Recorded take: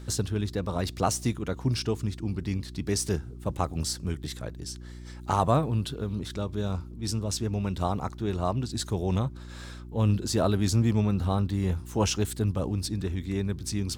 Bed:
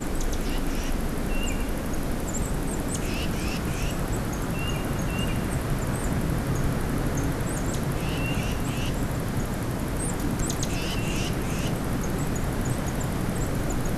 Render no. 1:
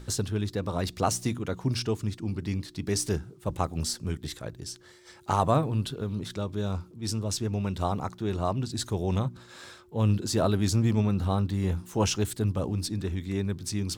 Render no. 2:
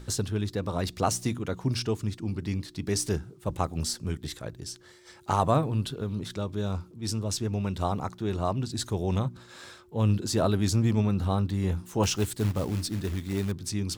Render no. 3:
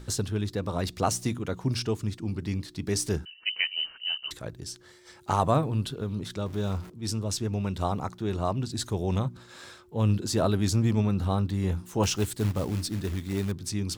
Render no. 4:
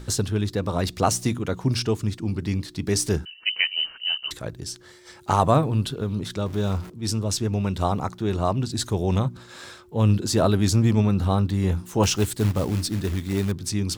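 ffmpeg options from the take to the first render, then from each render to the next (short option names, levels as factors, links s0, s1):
-af "bandreject=f=60:t=h:w=4,bandreject=f=120:t=h:w=4,bandreject=f=180:t=h:w=4,bandreject=f=240:t=h:w=4,bandreject=f=300:t=h:w=4"
-filter_complex "[0:a]asettb=1/sr,asplit=3[s0][s1][s2];[s0]atrim=end=12.034[s3];[s1]atrim=start=12.03:end=13.52,asetpts=PTS-STARTPTS,afade=t=in:d=0.004:c=qsin,afade=t=out:st=1.486:d=0.004:c=qsin,acrusher=bits=4:mode=log:mix=0:aa=0.000001[s4];[s2]atrim=start=13.516[s5];[s3][s4]acrossfade=d=0.004:c1=hsin:c2=qsin[s6];[s6][s5]acrossfade=d=0.004:c1=qsin:c2=hsin"
-filter_complex "[0:a]asettb=1/sr,asplit=3[s0][s1][s2];[s0]atrim=end=3.254[s3];[s1]atrim=start=3.25:end=4.31,asetpts=PTS-STARTPTS,afade=t=in:d=0.004:c=qsin,afade=t=out:st=1.056:d=0.004:c=qsin,lowpass=f=2600:t=q:w=0.5098,lowpass=f=2600:t=q:w=0.6013,lowpass=f=2600:t=q:w=0.9,lowpass=f=2600:t=q:w=2.563,afreqshift=-3100[s4];[s2]atrim=start=4.306[s5];[s3][s4]acrossfade=d=0.004:c1=hsin:c2=qsin[s6];[s6][s5]acrossfade=d=0.004:c1=qsin:c2=hsin,asettb=1/sr,asplit=3[s7][s8][s9];[s7]atrim=end=6.464[s10];[s8]atrim=start=6.46:end=6.9,asetpts=PTS-STARTPTS,afade=t=in:d=0.004:c=qsin,afade=t=out:st=0.436:d=0.004:c=qsin,aeval=exprs='val(0)+0.5*0.00841*sgn(val(0))':c=same[s11];[s9]atrim=start=6.896[s12];[s10][s11]acrossfade=d=0.004:c1=hsin:c2=qsin[s13];[s13][s12]acrossfade=d=0.004:c1=qsin:c2=hsin"
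-af "volume=1.78"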